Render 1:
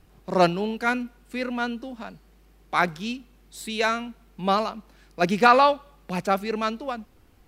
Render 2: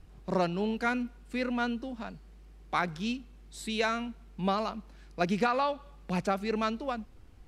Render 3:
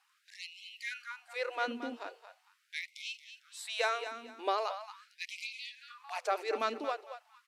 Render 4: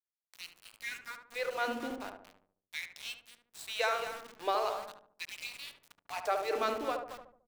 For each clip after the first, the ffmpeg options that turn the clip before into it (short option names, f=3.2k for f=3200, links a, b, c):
-af "lowpass=10k,lowshelf=f=120:g=9.5,acompressor=threshold=-20dB:ratio=12,volume=-3.5dB"
-filter_complex "[0:a]asplit=2[a][b];[b]aecho=0:1:226|452|678:0.282|0.0789|0.0221[c];[a][c]amix=inputs=2:normalize=0,afftfilt=real='re*gte(b*sr/1024,240*pow(2100/240,0.5+0.5*sin(2*PI*0.41*pts/sr)))':imag='im*gte(b*sr/1024,240*pow(2100/240,0.5+0.5*sin(2*PI*0.41*pts/sr)))':win_size=1024:overlap=0.75,volume=-1.5dB"
-filter_complex "[0:a]aeval=exprs='val(0)*gte(abs(val(0)),0.00708)':c=same,asplit=2[a][b];[b]adelay=73,lowpass=f=920:p=1,volume=-3dB,asplit=2[c][d];[d]adelay=73,lowpass=f=920:p=1,volume=0.51,asplit=2[e][f];[f]adelay=73,lowpass=f=920:p=1,volume=0.51,asplit=2[g][h];[h]adelay=73,lowpass=f=920:p=1,volume=0.51,asplit=2[i][j];[j]adelay=73,lowpass=f=920:p=1,volume=0.51,asplit=2[k][l];[l]adelay=73,lowpass=f=920:p=1,volume=0.51,asplit=2[m][n];[n]adelay=73,lowpass=f=920:p=1,volume=0.51[o];[c][e][g][i][k][m][o]amix=inputs=7:normalize=0[p];[a][p]amix=inputs=2:normalize=0"